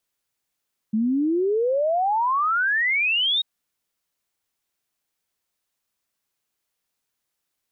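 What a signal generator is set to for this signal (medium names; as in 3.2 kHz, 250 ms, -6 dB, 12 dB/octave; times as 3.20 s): log sweep 210 Hz -> 3.8 kHz 2.49 s -18.5 dBFS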